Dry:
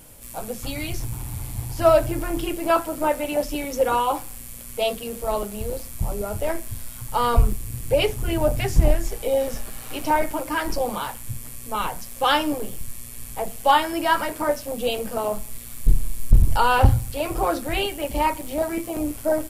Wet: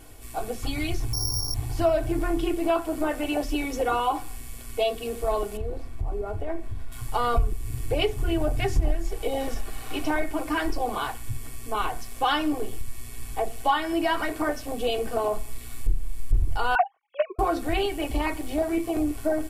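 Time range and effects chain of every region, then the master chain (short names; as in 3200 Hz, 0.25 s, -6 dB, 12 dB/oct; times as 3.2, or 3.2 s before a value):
1.13–1.54 LPF 1200 Hz 24 dB/oct + flutter echo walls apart 3.2 m, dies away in 0.37 s + careless resampling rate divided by 8×, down none, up zero stuff
5.57–6.92 LPF 1300 Hz 6 dB/oct + compressor 2:1, threshold -30 dBFS
16.75–17.39 sine-wave speech + upward expander 2.5:1, over -29 dBFS
whole clip: high shelf 7200 Hz -11.5 dB; comb 2.7 ms, depth 70%; compressor 2.5:1, threshold -22 dBFS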